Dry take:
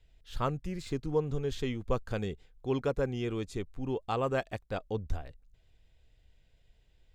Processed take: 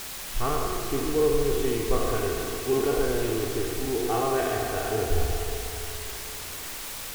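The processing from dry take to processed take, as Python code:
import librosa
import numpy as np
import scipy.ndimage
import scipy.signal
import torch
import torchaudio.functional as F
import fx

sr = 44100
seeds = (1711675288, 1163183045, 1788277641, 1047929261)

p1 = fx.spec_trails(x, sr, decay_s=1.56)
p2 = scipy.signal.sosfilt(scipy.signal.butter(2, 5900.0, 'lowpass', fs=sr, output='sos'), p1)
p3 = fx.high_shelf(p2, sr, hz=2900.0, db=-11.0)
p4 = fx.notch(p3, sr, hz=990.0, q=22.0)
p5 = p4 + 0.75 * np.pad(p4, (int(2.7 * sr / 1000.0), 0))[:len(p4)]
p6 = fx.quant_dither(p5, sr, seeds[0], bits=6, dither='triangular')
p7 = p6 + fx.echo_diffused(p6, sr, ms=490, feedback_pct=41, wet_db=-13.5, dry=0)
p8 = fx.rev_spring(p7, sr, rt60_s=2.3, pass_ms=(35, 59), chirp_ms=30, drr_db=4.5)
y = fx.doppler_dist(p8, sr, depth_ms=0.19)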